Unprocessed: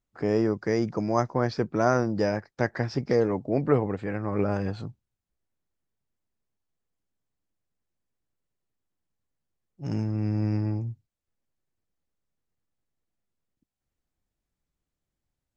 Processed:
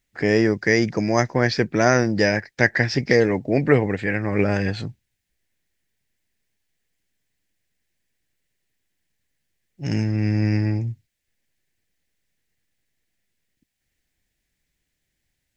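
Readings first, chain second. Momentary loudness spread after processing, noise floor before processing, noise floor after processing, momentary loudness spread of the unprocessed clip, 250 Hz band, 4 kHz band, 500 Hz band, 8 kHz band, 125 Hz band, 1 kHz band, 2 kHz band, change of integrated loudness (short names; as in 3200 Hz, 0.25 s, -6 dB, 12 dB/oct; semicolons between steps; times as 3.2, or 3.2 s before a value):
8 LU, under -85 dBFS, -78 dBFS, 9 LU, +6.0 dB, +13.0 dB, +5.5 dB, n/a, +6.0 dB, +3.5 dB, +14.5 dB, +6.5 dB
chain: resonant high shelf 1500 Hz +6.5 dB, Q 3; gain +6 dB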